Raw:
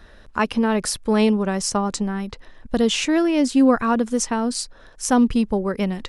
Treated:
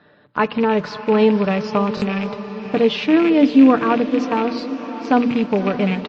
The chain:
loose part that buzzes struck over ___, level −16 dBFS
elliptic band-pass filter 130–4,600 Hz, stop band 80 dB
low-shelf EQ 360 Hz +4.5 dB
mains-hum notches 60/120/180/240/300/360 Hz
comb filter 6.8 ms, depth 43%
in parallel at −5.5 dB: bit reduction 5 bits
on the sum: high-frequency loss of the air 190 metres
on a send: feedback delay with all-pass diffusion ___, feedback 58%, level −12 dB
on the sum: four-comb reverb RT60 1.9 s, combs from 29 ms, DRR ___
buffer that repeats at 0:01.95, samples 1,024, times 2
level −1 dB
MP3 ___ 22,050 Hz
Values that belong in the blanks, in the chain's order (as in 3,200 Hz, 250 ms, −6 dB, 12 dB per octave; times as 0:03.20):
−27 dBFS, 571 ms, 19.5 dB, 32 kbit/s